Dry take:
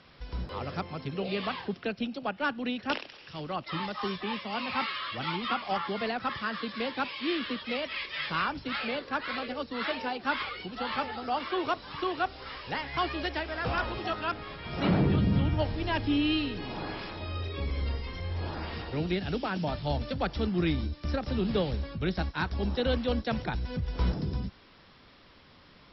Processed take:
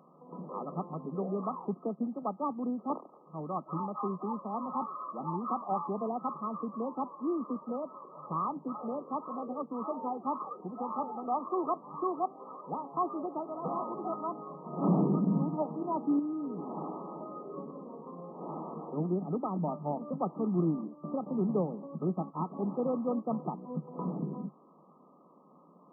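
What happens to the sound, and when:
16.19–18.97 compressor 4:1, threshold -30 dBFS
21.2–21.94 band shelf 2100 Hz -9.5 dB
whole clip: FFT band-pass 150–1300 Hz; dynamic EQ 530 Hz, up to -3 dB, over -42 dBFS, Q 2.1

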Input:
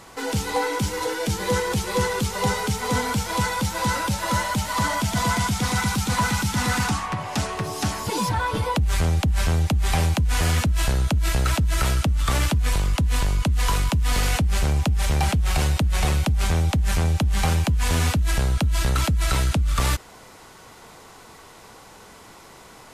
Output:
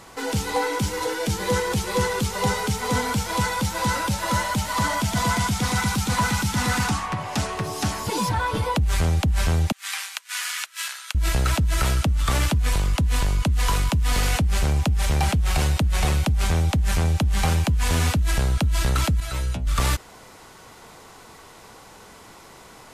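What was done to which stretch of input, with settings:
9.72–11.15 HPF 1300 Hz 24 dB/oct
19.2–19.67 metallic resonator 61 Hz, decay 0.33 s, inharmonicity 0.002

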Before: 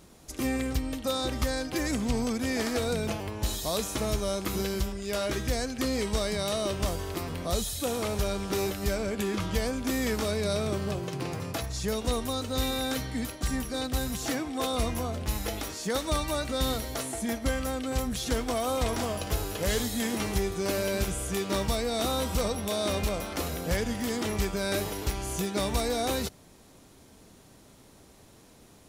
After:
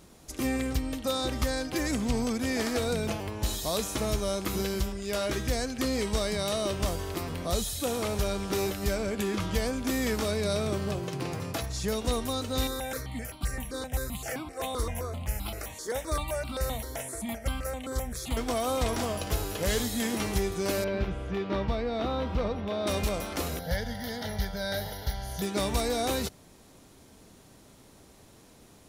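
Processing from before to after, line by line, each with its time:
12.67–18.37 step phaser 7.7 Hz 700–1800 Hz
20.84–22.87 air absorption 320 m
23.59–25.42 fixed phaser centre 1700 Hz, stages 8

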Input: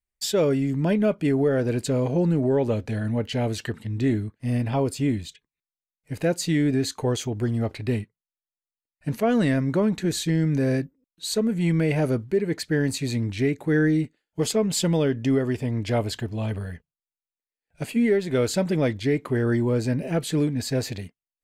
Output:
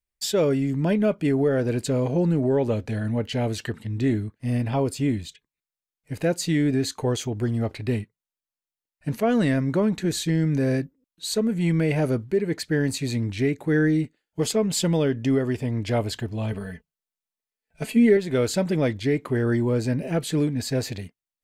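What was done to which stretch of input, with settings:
16.52–18.17 comb 4.6 ms, depth 67%

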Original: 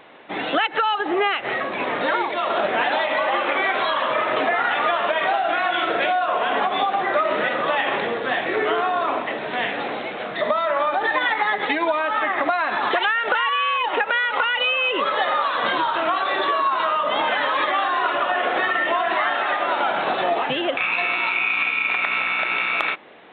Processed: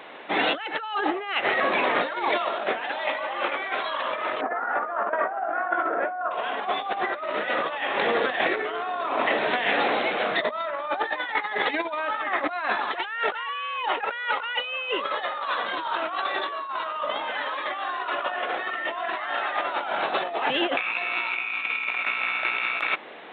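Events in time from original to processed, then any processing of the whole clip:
4.41–6.31 Chebyshev band-pass 210–1500 Hz, order 3
whole clip: HPF 110 Hz; low shelf 210 Hz -9 dB; negative-ratio compressor -26 dBFS, ratio -0.5

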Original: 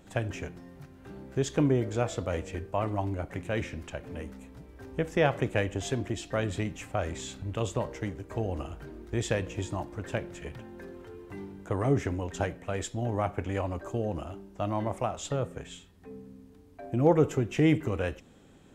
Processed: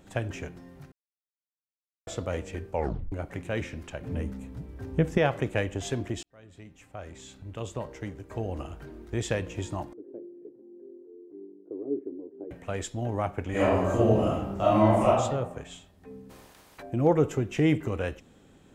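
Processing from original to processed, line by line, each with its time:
0.92–2.07 mute
2.71 tape stop 0.41 s
4.01–5.18 bell 110 Hz +10.5 dB 2.9 oct
6.23–8.74 fade in
9.93–12.51 Butterworth band-pass 350 Hz, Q 2.5
13.5–15.07 reverb throw, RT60 0.95 s, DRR -9.5 dB
16.29–16.81 spectral limiter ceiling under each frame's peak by 29 dB

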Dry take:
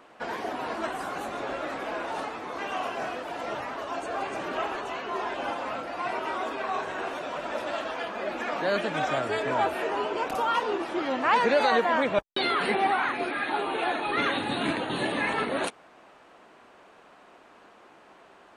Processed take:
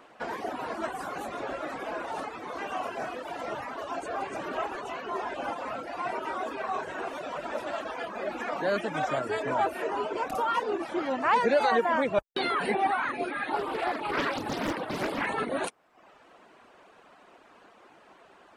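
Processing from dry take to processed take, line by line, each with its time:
13.53–15.26 Doppler distortion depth 0.76 ms
whole clip: reverb removal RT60 0.66 s; dynamic EQ 3400 Hz, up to -5 dB, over -44 dBFS, Q 0.87

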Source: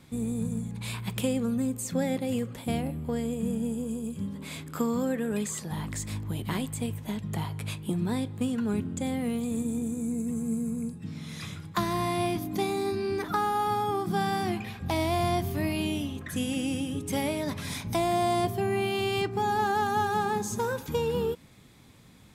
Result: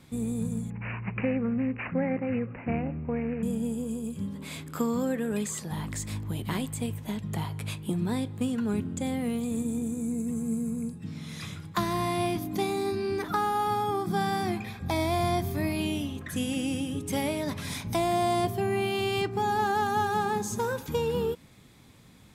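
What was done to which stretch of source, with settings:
0.7–3.43 careless resampling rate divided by 8×, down none, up filtered
13.9–15.8 Butterworth band-stop 2900 Hz, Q 7.7

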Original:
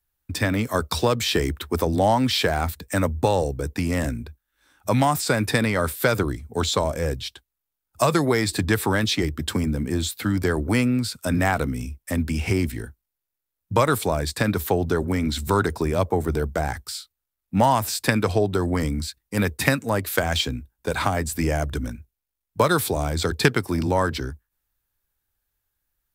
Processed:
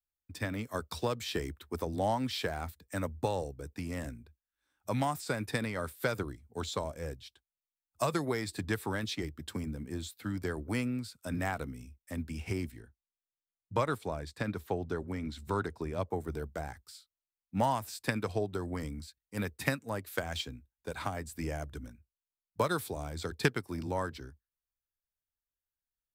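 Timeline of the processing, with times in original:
12.79–16.1 high shelf 7600 Hz -10 dB
whole clip: upward expander 1.5:1, over -34 dBFS; gain -9 dB

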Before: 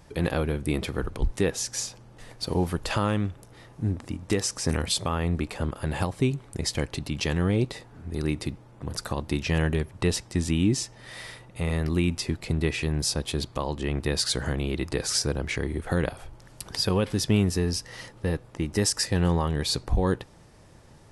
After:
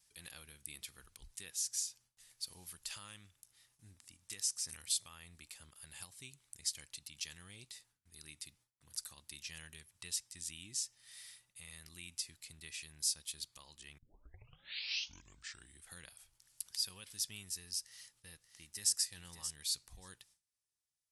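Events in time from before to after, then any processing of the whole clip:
13.98 tape start 1.88 s
17.83–18.96 echo throw 0.58 s, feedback 10%, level -10 dB
whole clip: pre-emphasis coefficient 0.9; gate with hold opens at -52 dBFS; passive tone stack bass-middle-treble 5-5-5; gain +1 dB

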